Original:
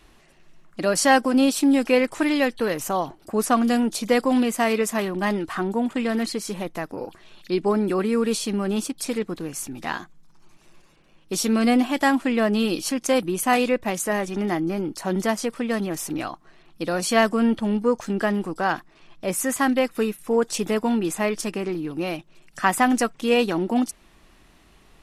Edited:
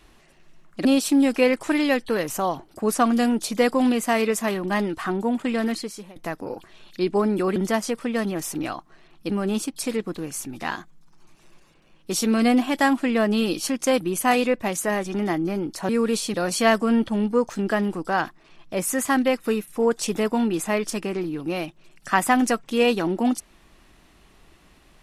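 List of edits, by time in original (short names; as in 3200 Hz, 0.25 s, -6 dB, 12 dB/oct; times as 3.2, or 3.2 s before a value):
0.85–1.36 cut
6.17–6.67 fade out, to -21 dB
8.07–8.52 swap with 15.11–16.85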